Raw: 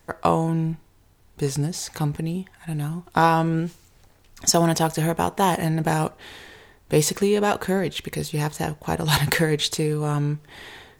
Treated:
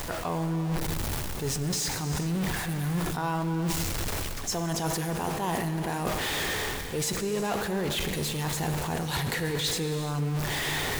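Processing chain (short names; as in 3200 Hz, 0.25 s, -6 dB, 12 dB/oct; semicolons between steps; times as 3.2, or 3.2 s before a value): zero-crossing step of -23.5 dBFS; reverse; compressor, threshold -27 dBFS, peak gain reduction 14.5 dB; reverse; non-linear reverb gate 0.46 s flat, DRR 7.5 dB; sustainer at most 29 dB/s; gain -1.5 dB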